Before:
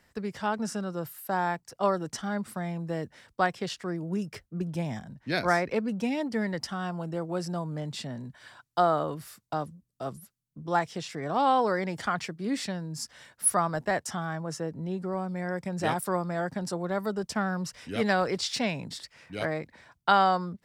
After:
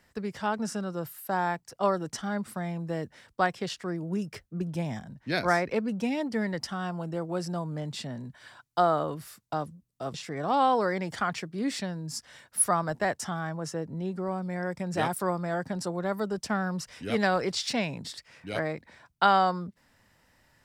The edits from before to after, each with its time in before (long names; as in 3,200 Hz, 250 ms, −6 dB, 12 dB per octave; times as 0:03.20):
0:10.14–0:11.00: remove